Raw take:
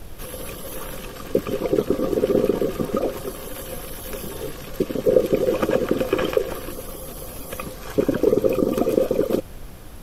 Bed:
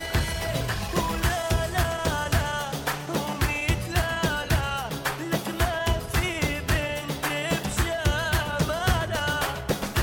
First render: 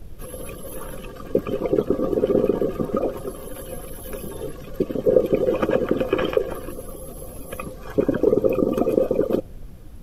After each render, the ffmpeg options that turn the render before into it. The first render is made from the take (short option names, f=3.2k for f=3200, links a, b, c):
-af "afftdn=nr=11:nf=-37"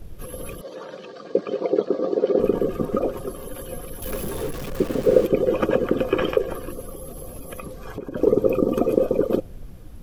-filter_complex "[0:a]asettb=1/sr,asplit=3[a][b][c];[a]atrim=end=0.614[d];[b]atrim=start=0.61:end=2.4,asetpts=PTS-STARTPTS,afade=t=in:d=0.004:c=qsin,afade=t=out:st=1.786:d=0.004:c=qsin,highpass=f=200:w=0.5412,highpass=f=200:w=1.3066,equalizer=f=250:t=q:w=4:g=-9,equalizer=f=640:t=q:w=4:g=5,equalizer=f=1.2k:t=q:w=4:g=-3,equalizer=f=2.7k:t=q:w=4:g=-5,equalizer=f=4.3k:t=q:w=4:g=8,lowpass=f=6.1k:w=0.5412,lowpass=f=6.1k:w=1.3066[e];[c]atrim=start=2.396[f];[d][e]acrossfade=d=0.004:c1=hsin:c2=qsin[g];[g][f]acrossfade=d=0.004:c1=qsin:c2=hsin,asettb=1/sr,asplit=3[h][i][j];[h]atrim=end=4.024[k];[i]atrim=start=4.02:end=5.27,asetpts=PTS-STARTPTS,afade=t=in:d=0.004:c=qsin,afade=t=out:st=1.246:d=0.004:c=qsin,aeval=exprs='val(0)+0.5*0.0316*sgn(val(0))':c=same[l];[j]atrim=start=5.266[m];[k][l]acrossfade=d=0.004:c1=hsin:c2=qsin[n];[n][m]acrossfade=d=0.004:c1=qsin:c2=hsin,asplit=3[o][p][q];[o]afade=t=out:st=6.88:d=0.02[r];[p]acompressor=threshold=-29dB:ratio=6:attack=3.2:release=140:knee=1:detection=peak,afade=t=in:st=6.88:d=0.02,afade=t=out:st=8.15:d=0.02[s];[q]afade=t=in:st=8.15:d=0.02[t];[r][s][t]amix=inputs=3:normalize=0"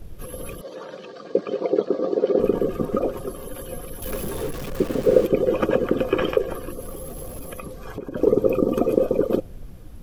-filter_complex "[0:a]asettb=1/sr,asplit=3[a][b][c];[a]atrim=end=6.824[d];[b]atrim=start=6.82:end=7.5,asetpts=PTS-STARTPTS,afade=t=in:d=0.004:c=qsin,afade=t=out:st=0.676:d=0.004:c=qsin,aeval=exprs='val(0)+0.5*0.00841*sgn(val(0))':c=same[e];[c]atrim=start=7.496[f];[d][e]acrossfade=d=0.004:c1=hsin:c2=qsin[g];[g][f]acrossfade=d=0.004:c1=qsin:c2=hsin"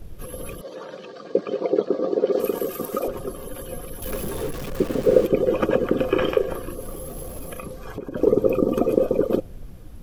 -filter_complex "[0:a]asettb=1/sr,asplit=3[a][b][c];[a]atrim=end=2.324[d];[b]atrim=start=2.32:end=3.08,asetpts=PTS-STARTPTS,afade=t=in:d=0.004:c=qsin,afade=t=out:st=0.756:d=0.004:c=qsin,aemphasis=mode=production:type=riaa[e];[c]atrim=start=3.076[f];[d][e]acrossfade=d=0.004:c1=hsin:c2=qsin[g];[g][f]acrossfade=d=0.004:c1=qsin:c2=hsin,asettb=1/sr,asplit=3[h][i][j];[h]atrim=end=5.914[k];[i]atrim=start=5.91:end=7.82,asetpts=PTS-STARTPTS,afade=t=in:d=0.004:c=qsin,afade=t=out:st=1.906:d=0.004:c=qsin,asplit=2[l][m];[m]adelay=35,volume=-9dB[n];[l][n]amix=inputs=2:normalize=0,atrim=end_sample=84231[o];[j]atrim=start=7.816[p];[k][o]acrossfade=d=0.004:c1=hsin:c2=qsin[q];[q][p]acrossfade=d=0.004:c1=qsin:c2=hsin"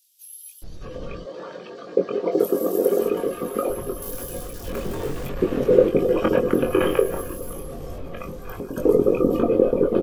-filter_complex "[0:a]asplit=2[a][b];[b]adelay=22,volume=-4.5dB[c];[a][c]amix=inputs=2:normalize=0,acrossover=split=3900[d][e];[d]adelay=620[f];[f][e]amix=inputs=2:normalize=0"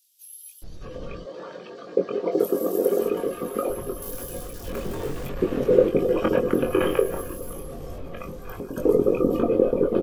-af "volume=-2dB"